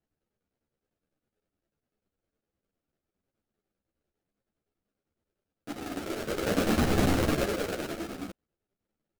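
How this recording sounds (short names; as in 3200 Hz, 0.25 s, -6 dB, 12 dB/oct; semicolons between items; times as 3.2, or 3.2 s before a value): aliases and images of a low sample rate 1000 Hz, jitter 20%; chopped level 9.9 Hz, depth 60%, duty 75%; a shimmering, thickened sound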